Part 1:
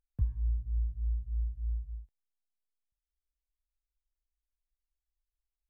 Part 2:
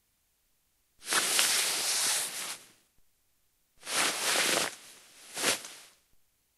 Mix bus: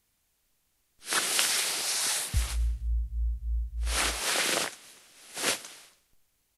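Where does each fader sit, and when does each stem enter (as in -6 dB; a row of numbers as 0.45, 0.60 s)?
+2.0, 0.0 dB; 2.15, 0.00 s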